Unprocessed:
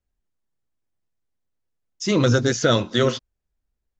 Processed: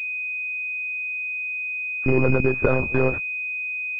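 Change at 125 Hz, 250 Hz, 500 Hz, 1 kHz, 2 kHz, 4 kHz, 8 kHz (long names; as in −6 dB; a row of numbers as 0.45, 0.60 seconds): −2.0 dB, −2.5 dB, −0.5 dB, −3.5 dB, +8.5 dB, below −25 dB, can't be measured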